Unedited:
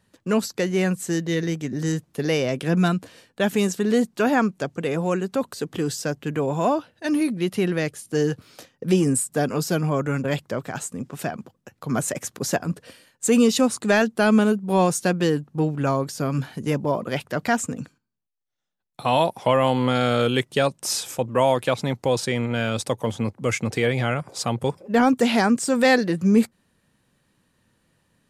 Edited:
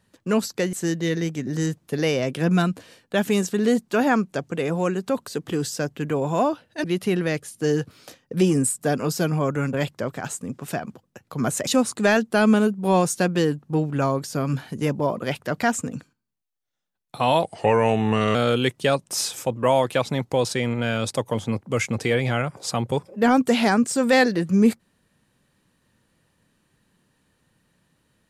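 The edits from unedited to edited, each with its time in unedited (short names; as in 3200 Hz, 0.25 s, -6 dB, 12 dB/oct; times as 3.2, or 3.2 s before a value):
0.73–0.99 cut
7.1–7.35 cut
12.18–13.52 cut
19.28–20.07 speed 86%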